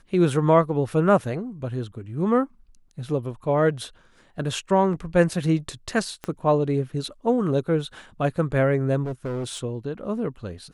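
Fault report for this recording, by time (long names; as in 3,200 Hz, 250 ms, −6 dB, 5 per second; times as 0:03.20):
0:06.24: click −17 dBFS
0:09.03–0:09.64: clipping −25.5 dBFS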